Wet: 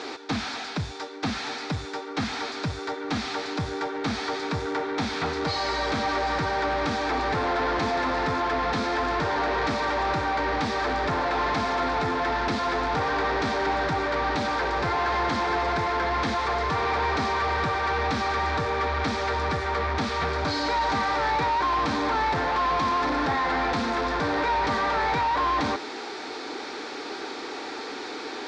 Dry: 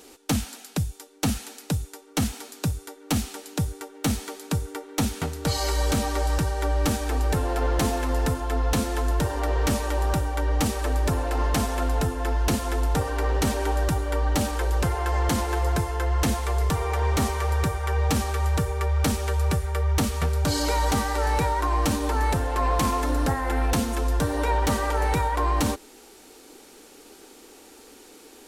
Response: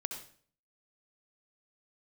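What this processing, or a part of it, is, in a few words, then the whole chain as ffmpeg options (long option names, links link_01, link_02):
overdrive pedal into a guitar cabinet: -filter_complex "[0:a]asplit=2[link_01][link_02];[link_02]highpass=frequency=720:poles=1,volume=32dB,asoftclip=type=tanh:threshold=-15dB[link_03];[link_01][link_03]amix=inputs=2:normalize=0,lowpass=frequency=5600:poles=1,volume=-6dB,highpass=84,equalizer=frequency=190:width_type=q:width=4:gain=-3,equalizer=frequency=530:width_type=q:width=4:gain=-5,equalizer=frequency=2900:width_type=q:width=4:gain=-10,lowpass=frequency=4500:width=0.5412,lowpass=frequency=4500:width=1.3066,volume=-3dB"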